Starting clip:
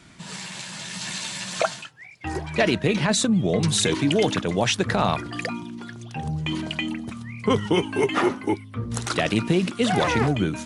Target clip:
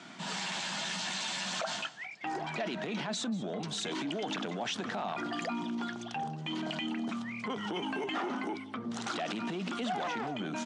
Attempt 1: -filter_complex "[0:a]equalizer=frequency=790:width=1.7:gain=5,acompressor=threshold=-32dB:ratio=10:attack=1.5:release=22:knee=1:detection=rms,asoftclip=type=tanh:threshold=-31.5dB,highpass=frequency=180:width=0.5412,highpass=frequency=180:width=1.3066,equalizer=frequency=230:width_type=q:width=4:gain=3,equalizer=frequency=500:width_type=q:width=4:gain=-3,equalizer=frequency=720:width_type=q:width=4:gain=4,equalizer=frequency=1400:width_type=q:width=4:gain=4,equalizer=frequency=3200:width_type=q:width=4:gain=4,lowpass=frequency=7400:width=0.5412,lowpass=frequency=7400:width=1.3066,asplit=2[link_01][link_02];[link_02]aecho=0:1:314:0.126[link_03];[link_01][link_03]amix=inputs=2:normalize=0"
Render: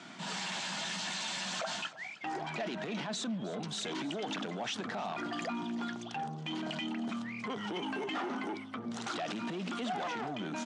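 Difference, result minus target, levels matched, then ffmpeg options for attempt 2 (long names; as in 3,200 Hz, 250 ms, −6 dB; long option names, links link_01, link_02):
echo 124 ms late; soft clipping: distortion +11 dB
-filter_complex "[0:a]equalizer=frequency=790:width=1.7:gain=5,acompressor=threshold=-32dB:ratio=10:attack=1.5:release=22:knee=1:detection=rms,asoftclip=type=tanh:threshold=-24dB,highpass=frequency=180:width=0.5412,highpass=frequency=180:width=1.3066,equalizer=frequency=230:width_type=q:width=4:gain=3,equalizer=frequency=500:width_type=q:width=4:gain=-3,equalizer=frequency=720:width_type=q:width=4:gain=4,equalizer=frequency=1400:width_type=q:width=4:gain=4,equalizer=frequency=3200:width_type=q:width=4:gain=4,lowpass=frequency=7400:width=0.5412,lowpass=frequency=7400:width=1.3066,asplit=2[link_01][link_02];[link_02]aecho=0:1:190:0.126[link_03];[link_01][link_03]amix=inputs=2:normalize=0"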